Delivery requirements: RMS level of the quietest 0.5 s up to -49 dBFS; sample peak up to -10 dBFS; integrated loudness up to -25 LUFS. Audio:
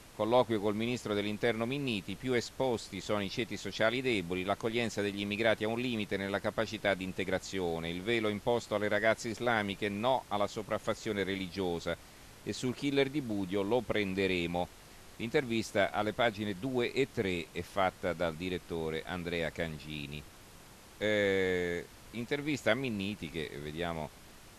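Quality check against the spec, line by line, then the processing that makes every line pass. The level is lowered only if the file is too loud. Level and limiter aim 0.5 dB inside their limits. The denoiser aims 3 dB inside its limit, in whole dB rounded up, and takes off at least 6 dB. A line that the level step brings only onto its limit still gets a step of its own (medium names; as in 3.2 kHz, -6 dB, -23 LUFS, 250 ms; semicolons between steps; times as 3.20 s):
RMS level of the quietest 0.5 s -54 dBFS: pass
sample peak -13.5 dBFS: pass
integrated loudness -33.5 LUFS: pass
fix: none needed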